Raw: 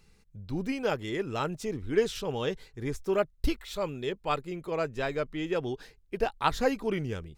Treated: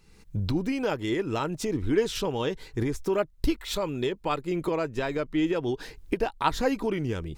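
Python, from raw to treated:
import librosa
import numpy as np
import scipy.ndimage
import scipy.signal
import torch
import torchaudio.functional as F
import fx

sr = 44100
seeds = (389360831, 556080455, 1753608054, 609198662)

y = fx.recorder_agc(x, sr, target_db=-21.0, rise_db_per_s=45.0, max_gain_db=30)
y = fx.small_body(y, sr, hz=(310.0, 950.0), ring_ms=45, db=6)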